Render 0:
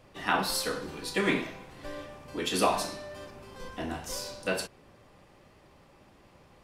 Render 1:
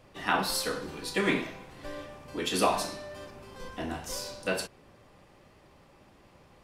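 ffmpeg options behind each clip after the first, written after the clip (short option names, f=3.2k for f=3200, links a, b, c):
-af anull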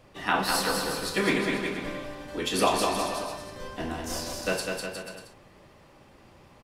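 -af "aecho=1:1:200|360|488|590.4|672.3:0.631|0.398|0.251|0.158|0.1,volume=1.5dB"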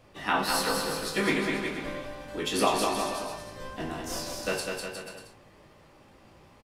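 -filter_complex "[0:a]asplit=2[a][b];[b]adelay=19,volume=-6.5dB[c];[a][c]amix=inputs=2:normalize=0,volume=-2dB"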